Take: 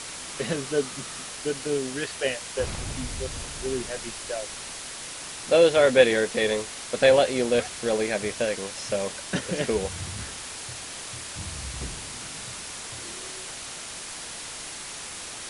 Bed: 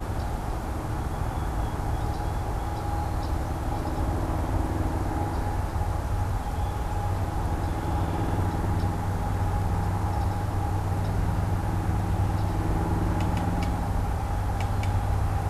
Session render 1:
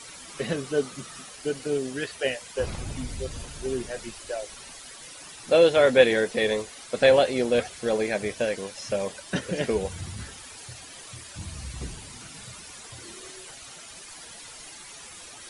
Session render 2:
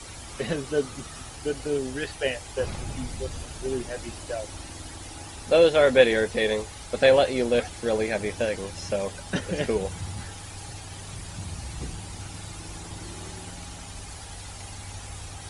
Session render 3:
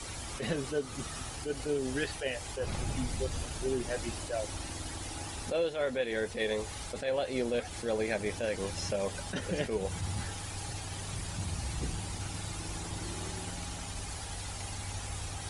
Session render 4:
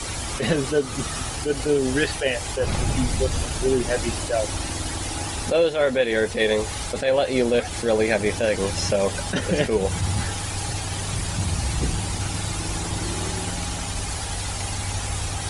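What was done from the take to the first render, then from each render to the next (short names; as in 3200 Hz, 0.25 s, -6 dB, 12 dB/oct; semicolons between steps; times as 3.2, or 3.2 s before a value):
denoiser 11 dB, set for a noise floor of -38 dBFS
add bed -15 dB
compressor 10:1, threshold -27 dBFS, peak gain reduction 16.5 dB; attack slew limiter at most 150 dB/s
gain +11.5 dB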